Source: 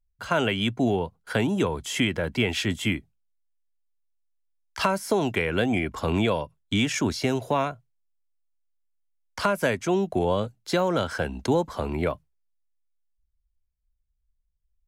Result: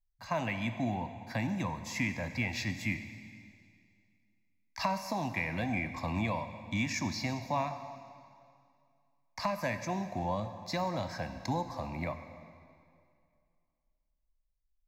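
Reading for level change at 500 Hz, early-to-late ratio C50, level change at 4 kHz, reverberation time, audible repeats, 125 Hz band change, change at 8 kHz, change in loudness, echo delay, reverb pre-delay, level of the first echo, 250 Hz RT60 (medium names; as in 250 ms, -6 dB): -13.0 dB, 9.5 dB, -12.0 dB, 2.3 s, no echo, -7.0 dB, -8.5 dB, -9.0 dB, no echo, 7 ms, no echo, 2.3 s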